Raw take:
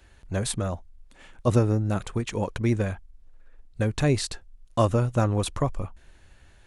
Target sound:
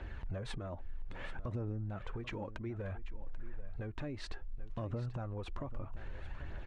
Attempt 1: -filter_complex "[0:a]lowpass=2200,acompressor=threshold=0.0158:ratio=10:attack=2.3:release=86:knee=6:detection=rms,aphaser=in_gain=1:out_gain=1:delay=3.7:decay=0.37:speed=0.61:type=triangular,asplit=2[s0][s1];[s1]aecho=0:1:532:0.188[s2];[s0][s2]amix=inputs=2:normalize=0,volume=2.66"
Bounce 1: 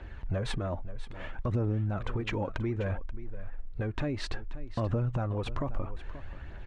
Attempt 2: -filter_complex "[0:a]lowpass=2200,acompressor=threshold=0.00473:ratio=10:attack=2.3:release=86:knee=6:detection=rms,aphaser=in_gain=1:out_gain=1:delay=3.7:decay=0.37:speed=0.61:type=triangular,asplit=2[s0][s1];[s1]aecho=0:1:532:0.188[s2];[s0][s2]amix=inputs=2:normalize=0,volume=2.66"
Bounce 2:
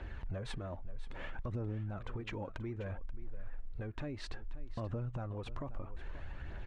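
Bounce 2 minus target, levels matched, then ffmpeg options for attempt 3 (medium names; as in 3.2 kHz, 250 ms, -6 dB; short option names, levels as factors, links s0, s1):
echo 255 ms early
-filter_complex "[0:a]lowpass=2200,acompressor=threshold=0.00473:ratio=10:attack=2.3:release=86:knee=6:detection=rms,aphaser=in_gain=1:out_gain=1:delay=3.7:decay=0.37:speed=0.61:type=triangular,asplit=2[s0][s1];[s1]aecho=0:1:787:0.188[s2];[s0][s2]amix=inputs=2:normalize=0,volume=2.66"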